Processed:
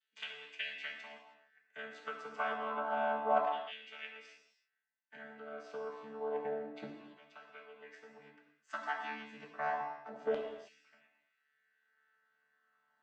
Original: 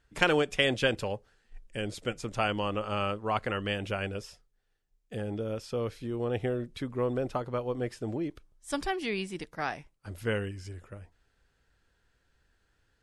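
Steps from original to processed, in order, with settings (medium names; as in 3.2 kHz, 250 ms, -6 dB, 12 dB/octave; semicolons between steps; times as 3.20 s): vocoder on a held chord bare fifth, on D3; tilt EQ -3 dB/octave; compression, threshold -28 dBFS, peak gain reduction 12 dB; LFO high-pass saw down 0.29 Hz 670–3300 Hz; gated-style reverb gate 350 ms falling, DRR -0.5 dB; trim +1 dB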